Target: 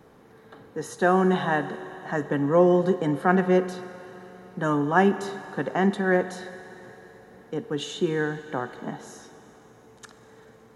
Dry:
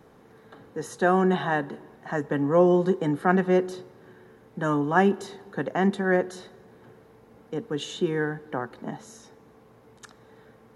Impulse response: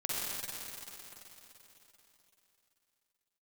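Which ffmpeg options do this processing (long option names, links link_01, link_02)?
-filter_complex "[0:a]asplit=2[link_01][link_02];[1:a]atrim=start_sample=2205,lowshelf=frequency=430:gain=-7[link_03];[link_02][link_03]afir=irnorm=-1:irlink=0,volume=-15.5dB[link_04];[link_01][link_04]amix=inputs=2:normalize=0"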